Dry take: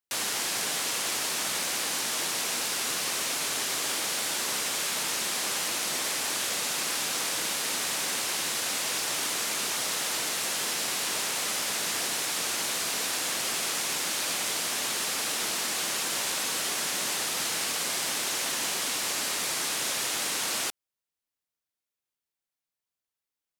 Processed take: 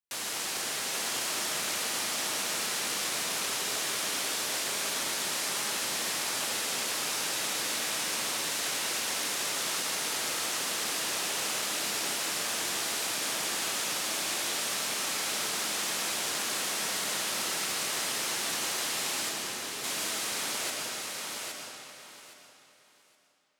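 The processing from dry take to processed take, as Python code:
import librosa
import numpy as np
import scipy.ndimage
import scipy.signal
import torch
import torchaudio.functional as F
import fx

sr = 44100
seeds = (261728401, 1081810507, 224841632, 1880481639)

y = fx.steep_lowpass(x, sr, hz=530.0, slope=96, at=(19.29, 19.84))
y = fx.echo_feedback(y, sr, ms=817, feedback_pct=21, wet_db=-4.5)
y = fx.rev_freeverb(y, sr, rt60_s=3.0, hf_ratio=0.8, predelay_ms=75, drr_db=0.5)
y = y * librosa.db_to_amplitude(-5.5)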